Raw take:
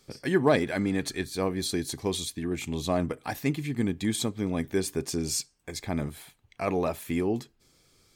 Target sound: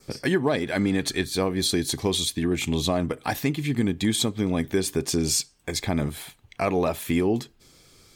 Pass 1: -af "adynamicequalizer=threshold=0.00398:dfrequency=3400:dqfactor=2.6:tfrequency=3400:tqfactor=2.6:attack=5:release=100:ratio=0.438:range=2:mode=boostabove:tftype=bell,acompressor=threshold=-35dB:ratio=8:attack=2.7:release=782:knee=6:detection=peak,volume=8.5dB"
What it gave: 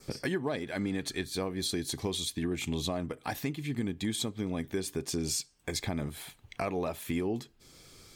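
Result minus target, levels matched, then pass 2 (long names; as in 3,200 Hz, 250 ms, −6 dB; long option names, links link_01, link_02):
downward compressor: peak gain reduction +9.5 dB
-af "adynamicequalizer=threshold=0.00398:dfrequency=3400:dqfactor=2.6:tfrequency=3400:tqfactor=2.6:attack=5:release=100:ratio=0.438:range=2:mode=boostabove:tftype=bell,acompressor=threshold=-24dB:ratio=8:attack=2.7:release=782:knee=6:detection=peak,volume=8.5dB"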